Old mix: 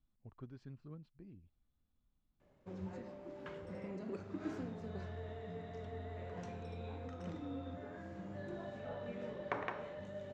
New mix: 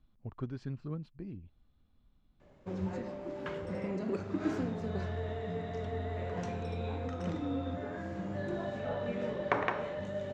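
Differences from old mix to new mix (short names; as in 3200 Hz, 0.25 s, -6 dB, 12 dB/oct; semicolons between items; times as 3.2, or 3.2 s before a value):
speech +12.0 dB; background +9.0 dB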